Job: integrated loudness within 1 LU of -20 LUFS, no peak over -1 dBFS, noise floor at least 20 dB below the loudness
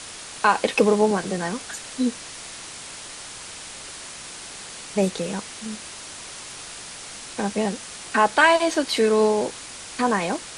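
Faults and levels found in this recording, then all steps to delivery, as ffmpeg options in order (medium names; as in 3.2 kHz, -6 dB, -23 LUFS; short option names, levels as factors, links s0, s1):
noise floor -39 dBFS; noise floor target -43 dBFS; loudness -22.5 LUFS; peak level -4.0 dBFS; loudness target -20.0 LUFS
-> -af "afftdn=nr=6:nf=-39"
-af "volume=1.33"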